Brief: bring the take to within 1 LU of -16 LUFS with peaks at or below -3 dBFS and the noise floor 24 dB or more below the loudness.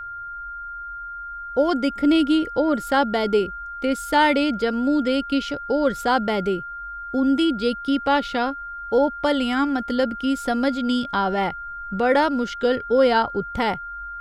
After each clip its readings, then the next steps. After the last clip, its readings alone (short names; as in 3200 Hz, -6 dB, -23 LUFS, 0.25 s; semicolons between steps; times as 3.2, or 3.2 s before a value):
steady tone 1400 Hz; tone level -31 dBFS; loudness -21.5 LUFS; peak -7.0 dBFS; loudness target -16.0 LUFS
-> notch 1400 Hz, Q 30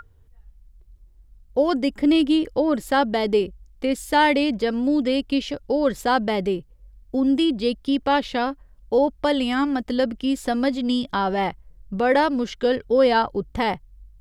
steady tone none; loudness -22.0 LUFS; peak -7.5 dBFS; loudness target -16.0 LUFS
-> gain +6 dB; limiter -3 dBFS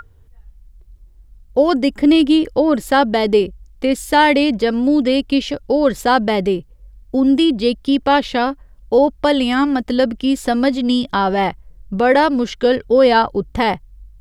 loudness -16.0 LUFS; peak -3.0 dBFS; noise floor -47 dBFS